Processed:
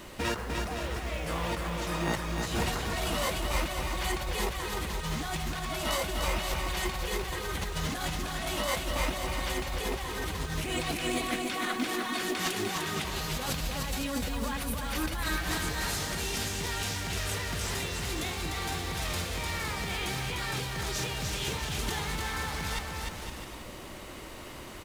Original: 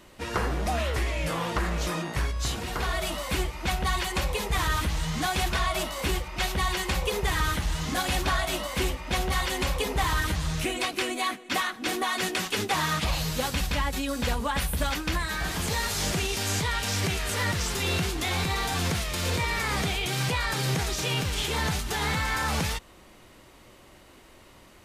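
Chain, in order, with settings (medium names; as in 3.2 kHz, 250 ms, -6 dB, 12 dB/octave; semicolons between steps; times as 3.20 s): compressor with a negative ratio -35 dBFS, ratio -1; bouncing-ball echo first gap 300 ms, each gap 0.7×, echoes 5; companded quantiser 6-bit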